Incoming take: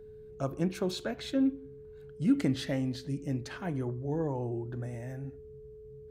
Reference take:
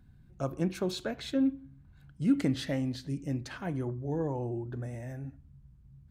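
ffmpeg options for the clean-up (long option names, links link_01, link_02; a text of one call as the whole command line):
ffmpeg -i in.wav -af "bandreject=frequency=430:width=30" out.wav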